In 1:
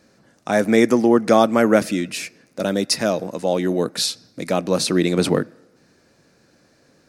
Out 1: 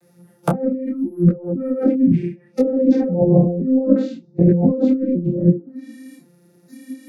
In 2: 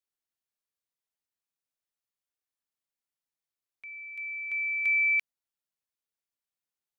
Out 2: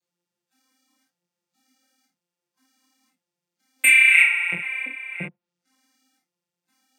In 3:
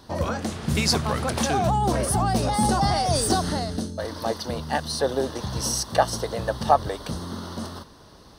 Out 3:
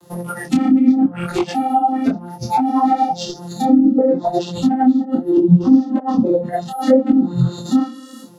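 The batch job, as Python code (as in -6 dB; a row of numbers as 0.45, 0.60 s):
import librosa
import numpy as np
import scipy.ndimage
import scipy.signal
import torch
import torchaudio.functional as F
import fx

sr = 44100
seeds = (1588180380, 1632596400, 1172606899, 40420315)

p1 = fx.vocoder_arp(x, sr, chord='bare fifth', root=53, every_ms=514)
p2 = scipy.signal.sosfilt(scipy.signal.butter(2, 6300.0, 'lowpass', fs=sr, output='sos'), p1)
p3 = p2 + fx.room_early_taps(p2, sr, ms=(34, 48), db=(-14.0, -5.5), dry=0)
p4 = fx.over_compress(p3, sr, threshold_db=-31.0, ratio=-1.0)
p5 = fx.low_shelf(p4, sr, hz=250.0, db=10.0)
p6 = np.repeat(p5[::4], 4)[:len(p5)]
p7 = fx.bass_treble(p6, sr, bass_db=-4, treble_db=9)
p8 = fx.noise_reduce_blind(p7, sr, reduce_db=19)
p9 = fx.env_lowpass_down(p8, sr, base_hz=480.0, full_db=-26.0)
p10 = fx.detune_double(p9, sr, cents=24)
y = p10 * 10.0 ** (-1.5 / 20.0) / np.max(np.abs(p10))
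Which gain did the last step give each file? +15.5, +30.0, +21.5 dB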